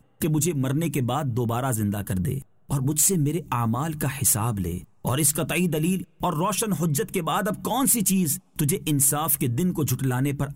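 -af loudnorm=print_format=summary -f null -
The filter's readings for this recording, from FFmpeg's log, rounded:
Input Integrated:    -23.5 LUFS
Input True Peak:      -9.0 dBTP
Input LRA:             2.5 LU
Input Threshold:     -33.5 LUFS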